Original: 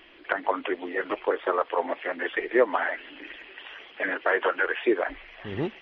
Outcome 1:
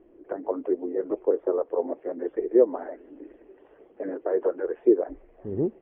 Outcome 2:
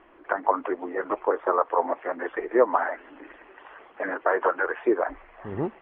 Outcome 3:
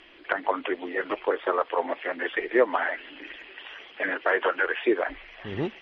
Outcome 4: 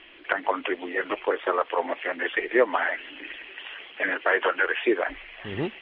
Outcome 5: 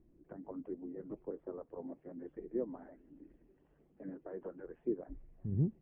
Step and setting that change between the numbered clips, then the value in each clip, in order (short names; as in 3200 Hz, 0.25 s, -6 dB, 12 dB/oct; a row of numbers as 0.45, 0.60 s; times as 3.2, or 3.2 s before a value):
synth low-pass, frequency: 430, 1100, 7900, 3000, 160 Hz